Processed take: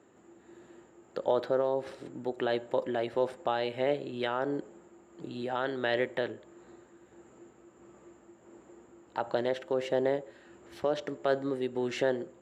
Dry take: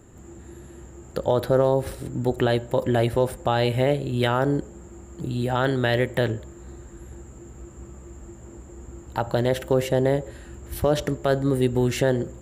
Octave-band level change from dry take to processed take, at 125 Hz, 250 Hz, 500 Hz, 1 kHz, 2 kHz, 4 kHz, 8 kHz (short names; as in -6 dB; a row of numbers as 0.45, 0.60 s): -21.5 dB, -10.5 dB, -7.0 dB, -7.0 dB, -7.0 dB, -8.5 dB, under -15 dB